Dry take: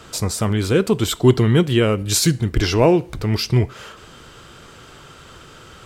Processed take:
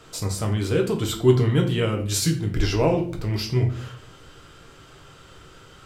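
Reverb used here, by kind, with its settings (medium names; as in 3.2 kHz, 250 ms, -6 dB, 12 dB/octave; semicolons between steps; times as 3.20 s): simulated room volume 45 m³, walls mixed, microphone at 0.51 m; trim -8 dB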